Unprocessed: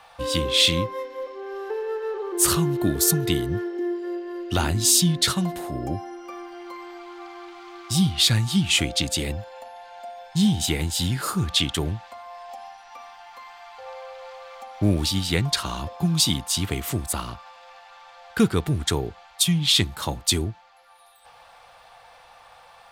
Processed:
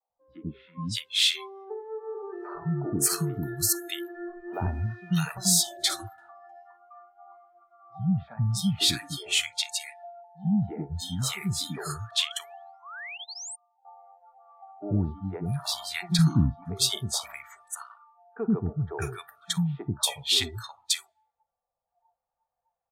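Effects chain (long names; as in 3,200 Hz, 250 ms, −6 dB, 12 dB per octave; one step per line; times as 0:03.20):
0:03.91–0:04.59: converter with a step at zero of −26.5 dBFS
low-pass that shuts in the quiet parts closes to 690 Hz, open at −21.5 dBFS
0:16.10–0:16.52: low-shelf EQ 360 Hz +11 dB
convolution reverb RT60 1.3 s, pre-delay 32 ms, DRR 17.5 dB
0:12.20–0:12.94: sound drawn into the spectrogram rise 1,000–9,100 Hz −34 dBFS
noise reduction from a noise print of the clip's start 28 dB
three-band delay without the direct sound mids, lows, highs 90/620 ms, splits 350/1,100 Hz
pitch vibrato 0.46 Hz 18 cents
0:13.07–0:13.85: expander for the loud parts 2.5 to 1, over −45 dBFS
level −4 dB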